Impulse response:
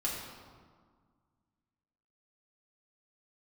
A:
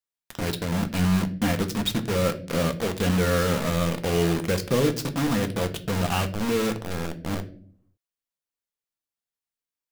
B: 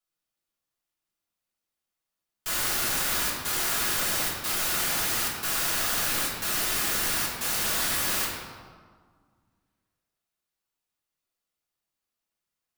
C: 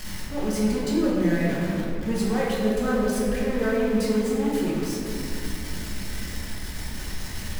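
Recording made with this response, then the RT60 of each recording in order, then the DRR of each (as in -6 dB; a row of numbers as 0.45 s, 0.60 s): B; no single decay rate, 1.7 s, 2.6 s; 7.0 dB, -5.5 dB, -6.5 dB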